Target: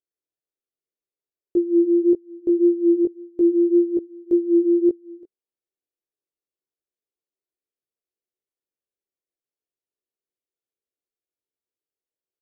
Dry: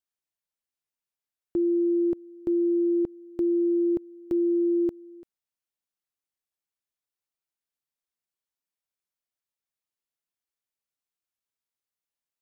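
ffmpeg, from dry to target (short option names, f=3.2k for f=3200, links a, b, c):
-af "flanger=delay=16:depth=3.7:speed=1.8,acontrast=90,firequalizer=gain_entry='entry(200,0);entry(380,14);entry(880,-6)':delay=0.05:min_phase=1,volume=-8.5dB"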